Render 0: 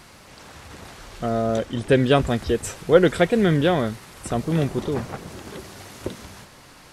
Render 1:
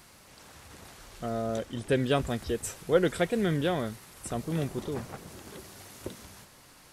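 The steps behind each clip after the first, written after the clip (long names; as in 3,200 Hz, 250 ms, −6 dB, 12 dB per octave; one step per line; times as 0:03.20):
high-shelf EQ 8,400 Hz +11 dB
level −9 dB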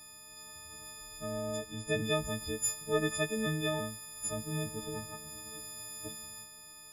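every partial snapped to a pitch grid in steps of 6 semitones
low-shelf EQ 180 Hz +5.5 dB
level −8.5 dB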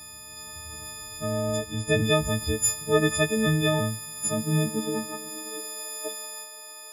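high-pass filter sweep 73 Hz → 510 Hz, 0:03.25–0:06.06
level +8.5 dB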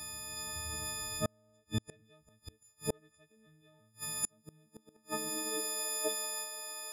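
in parallel at −9 dB: soft clipping −21 dBFS, distortion −12 dB
on the sum: gate with flip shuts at −17 dBFS, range −40 dB
level −3 dB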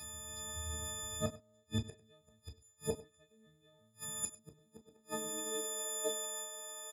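single-tap delay 98 ms −18 dB
on a send at −3 dB: convolution reverb, pre-delay 3 ms
on the sum: level −4.5 dB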